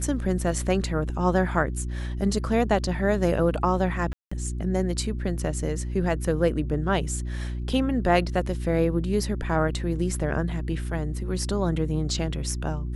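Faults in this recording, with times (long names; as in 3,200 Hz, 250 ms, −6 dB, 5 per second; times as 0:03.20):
mains hum 60 Hz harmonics 6 −30 dBFS
0:04.13–0:04.32: drop-out 185 ms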